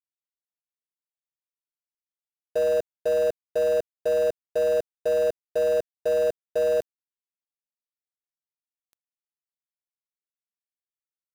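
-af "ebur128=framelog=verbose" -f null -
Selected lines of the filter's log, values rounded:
Integrated loudness:
  I:         -25.4 LUFS
  Threshold: -35.5 LUFS
Loudness range:
  LRA:         7.1 LU
  Threshold: -47.2 LUFS
  LRA low:   -32.4 LUFS
  LRA high:  -25.3 LUFS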